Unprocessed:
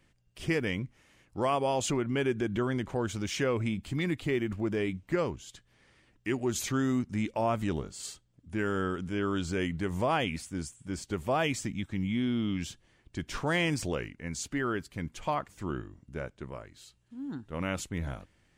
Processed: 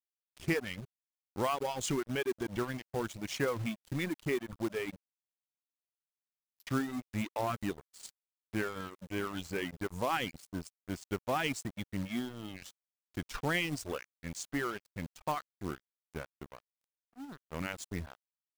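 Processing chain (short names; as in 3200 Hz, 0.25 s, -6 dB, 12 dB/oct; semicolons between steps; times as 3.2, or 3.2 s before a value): reverb removal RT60 0.91 s; 5.04–6.67 inverse Chebyshev band-stop 140–7900 Hz, stop band 40 dB; reverb removal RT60 1.1 s; dynamic EQ 630 Hz, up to -4 dB, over -49 dBFS, Q 3.9; crossover distortion -42.5 dBFS; short-mantissa float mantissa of 2-bit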